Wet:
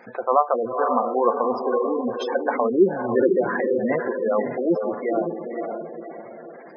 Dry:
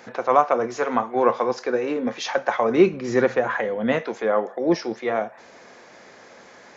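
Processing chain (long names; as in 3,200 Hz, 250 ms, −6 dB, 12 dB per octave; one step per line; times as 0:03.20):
feedback delay with all-pass diffusion 518 ms, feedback 43%, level −4 dB
gate on every frequency bin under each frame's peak −15 dB strong
level −1 dB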